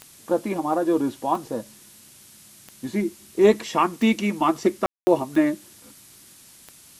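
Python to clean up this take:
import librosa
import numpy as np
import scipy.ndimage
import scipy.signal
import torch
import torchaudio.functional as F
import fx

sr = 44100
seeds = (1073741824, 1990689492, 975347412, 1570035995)

y = fx.fix_declick_ar(x, sr, threshold=10.0)
y = fx.fix_ambience(y, sr, seeds[0], print_start_s=6.12, print_end_s=6.62, start_s=4.86, end_s=5.07)
y = fx.noise_reduce(y, sr, print_start_s=6.12, print_end_s=6.62, reduce_db=17.0)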